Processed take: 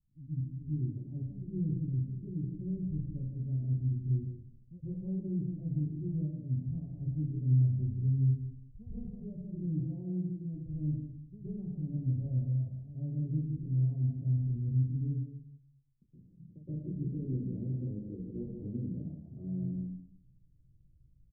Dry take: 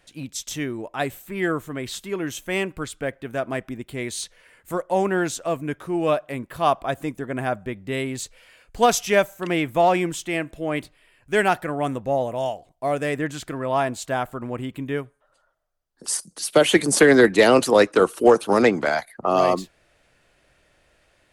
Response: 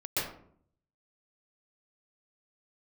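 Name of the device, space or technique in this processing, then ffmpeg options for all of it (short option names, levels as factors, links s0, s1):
club heard from the street: -filter_complex "[0:a]asettb=1/sr,asplit=3[s0][s1][s2];[s0]atrim=end=9.684[s3];[s1]atrim=start=9.68:end=10.54,asetpts=PTS-STARTPTS,afade=t=in:d=0.004:c=qsin,afade=t=out:st=0.856:d=0.004:c=qsin,highpass=f=230:p=1[s4];[s2]atrim=start=10.536[s5];[s3][s4]acrossfade=d=0.004:c1=hsin:c2=qsin[s6];[s6][s5]acrossfade=d=0.004:c1=qsin:c2=hsin,aecho=1:1:158:0.422,alimiter=limit=0.237:level=0:latency=1:release=346,lowpass=f=170:w=0.5412,lowpass=f=170:w=1.3066[s7];[1:a]atrim=start_sample=2205[s8];[s7][s8]afir=irnorm=-1:irlink=0,volume=0.596"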